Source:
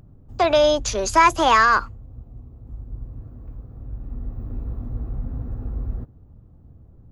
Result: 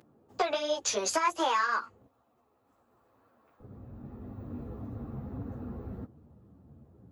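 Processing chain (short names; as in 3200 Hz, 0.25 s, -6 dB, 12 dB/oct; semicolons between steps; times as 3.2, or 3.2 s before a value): HPF 340 Hz 12 dB/oct, from 2.07 s 920 Hz, from 3.6 s 150 Hz; compressor 12:1, threshold -24 dBFS, peak gain reduction 14 dB; ensemble effect; gain +2.5 dB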